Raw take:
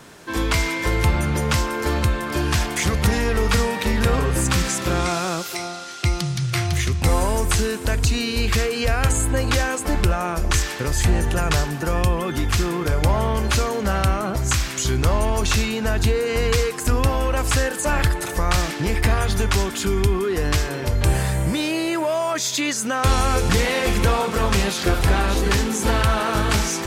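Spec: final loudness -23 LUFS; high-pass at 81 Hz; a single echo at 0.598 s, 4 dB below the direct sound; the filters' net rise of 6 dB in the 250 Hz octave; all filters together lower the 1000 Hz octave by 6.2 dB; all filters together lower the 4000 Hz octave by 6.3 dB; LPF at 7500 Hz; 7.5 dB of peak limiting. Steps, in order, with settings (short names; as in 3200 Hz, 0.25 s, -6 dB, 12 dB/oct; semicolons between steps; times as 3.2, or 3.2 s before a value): HPF 81 Hz; LPF 7500 Hz; bell 250 Hz +8.5 dB; bell 1000 Hz -8.5 dB; bell 4000 Hz -7.5 dB; limiter -12.5 dBFS; echo 0.598 s -4 dB; gain -2 dB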